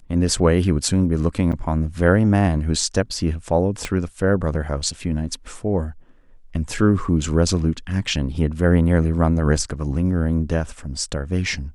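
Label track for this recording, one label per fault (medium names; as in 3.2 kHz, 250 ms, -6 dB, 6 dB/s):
1.520000	1.530000	dropout 7.3 ms
3.850000	3.850000	pop -11 dBFS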